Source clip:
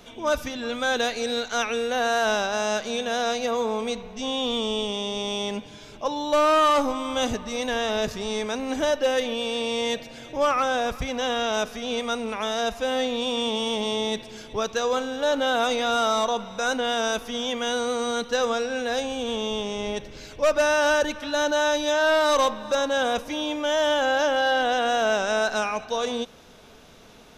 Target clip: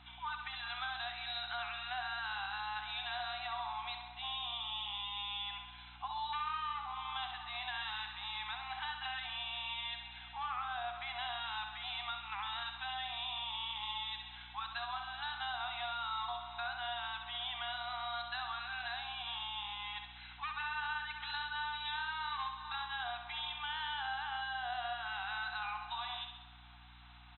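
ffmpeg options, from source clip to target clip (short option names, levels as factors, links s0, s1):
-af "afftfilt=real='re*between(b*sr/4096,700,4100)':imag='im*between(b*sr/4096,700,4100)':win_size=4096:overlap=0.75,acompressor=threshold=0.0282:ratio=12,aeval=exprs='val(0)+0.00158*(sin(2*PI*60*n/s)+sin(2*PI*2*60*n/s)/2+sin(2*PI*3*60*n/s)/3+sin(2*PI*4*60*n/s)/4+sin(2*PI*5*60*n/s)/5)':c=same,aecho=1:1:66|132|198|264|330|396|462:0.447|0.259|0.15|0.0872|0.0505|0.0293|0.017,volume=0.473"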